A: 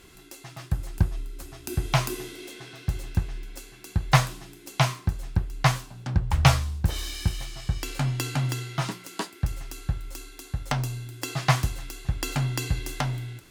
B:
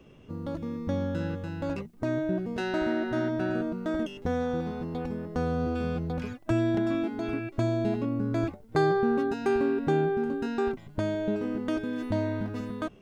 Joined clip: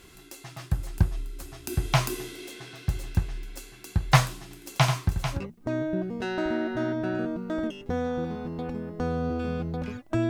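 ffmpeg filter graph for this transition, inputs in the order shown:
-filter_complex "[0:a]asettb=1/sr,asplit=3[s0][s1][s2];[s0]atrim=end=4.424[s3];[s1]atrim=start=4.42:end=5.41,asetpts=PTS-STARTPTS,afade=t=in:d=0.004:c=qsin,afade=t=out:st=0.986:d=0.004:c=qsin,aecho=1:1:87|444:0.422|0.355,atrim=end_sample=43659[s4];[s2]atrim=start=5.406[s5];[s3][s4]acrossfade=d=0.004:c1=hsin:c2=qsin[s6];[s6][s5]acrossfade=d=0.004:c1=qsin:c2=hsin,apad=whole_dur=10.29,atrim=end=10.29,atrim=end=5.41,asetpts=PTS-STARTPTS[s7];[1:a]atrim=start=1.67:end=6.65,asetpts=PTS-STARTPTS[s8];[s7][s8]acrossfade=d=0.1:c1=tri:c2=tri"

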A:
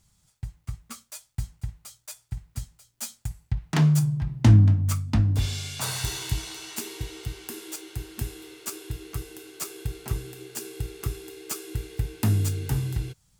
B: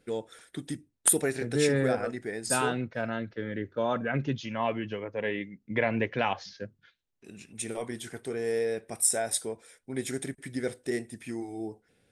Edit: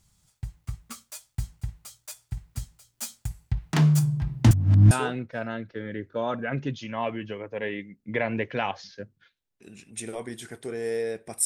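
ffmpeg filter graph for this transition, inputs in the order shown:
-filter_complex "[0:a]apad=whole_dur=11.45,atrim=end=11.45,asplit=2[s0][s1];[s0]atrim=end=4.512[s2];[s1]atrim=start=4.508:end=4.912,asetpts=PTS-STARTPTS,areverse[s3];[1:a]atrim=start=2.528:end=9.07[s4];[s2][s3]acrossfade=d=0.004:c1=hsin:c2=hsin[s5];[s5][s4]acrossfade=d=0.004:c1=hsin:c2=hsin"

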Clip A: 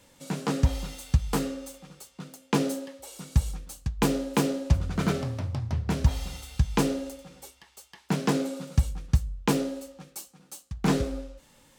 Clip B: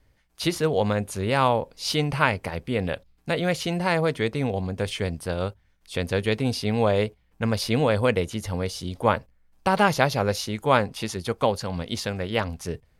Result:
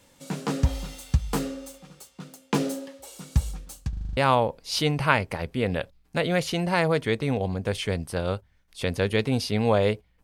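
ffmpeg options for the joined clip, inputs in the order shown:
-filter_complex "[0:a]apad=whole_dur=10.23,atrim=end=10.23,asplit=7[s0][s1][s2][s3][s4][s5][s6];[s0]atrim=end=3.932[s7];[s1]atrim=start=3.888:end=3.932[s8];[s2]atrim=start=3.888:end=3.932[s9];[s3]atrim=start=3.888:end=3.932[s10];[s4]atrim=start=3.888:end=3.932[s11];[s5]atrim=start=3.888:end=3.932[s12];[s6]atrim=start=3.888:end=3.932[s13];[1:a]atrim=start=1.298:end=7.36[s14];[s7][s8]acrossfade=d=0.004:c1=hsin:c2=hsin[s15];[s15][s9]acrossfade=d=0.004:c1=hsin:c2=hsin[s16];[s16][s10]acrossfade=d=0.004:c1=hsin:c2=hsin[s17];[s17][s11]acrossfade=d=0.004:c1=hsin:c2=hsin[s18];[s18][s12]acrossfade=d=0.004:c1=hsin:c2=hsin[s19];[s19][s13]acrossfade=d=0.004:c1=hsin:c2=hsin[s20];[s20][s14]acrossfade=d=0.004:c1=hsin:c2=hsin"

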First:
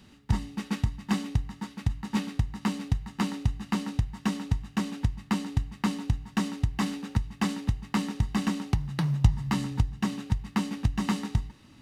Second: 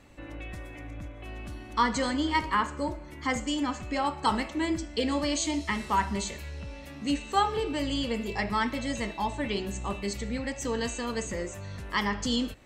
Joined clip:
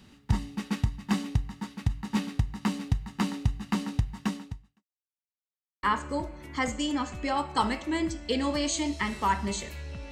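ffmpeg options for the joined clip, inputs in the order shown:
-filter_complex "[0:a]apad=whole_dur=10.11,atrim=end=10.11,asplit=2[s0][s1];[s0]atrim=end=4.84,asetpts=PTS-STARTPTS,afade=t=out:st=4.21:d=0.63:c=qua[s2];[s1]atrim=start=4.84:end=5.83,asetpts=PTS-STARTPTS,volume=0[s3];[1:a]atrim=start=2.51:end=6.79,asetpts=PTS-STARTPTS,afade=t=in:d=0.004:c=hsin[s4];[s2][s3][s4]concat=n=3:v=0:a=1"

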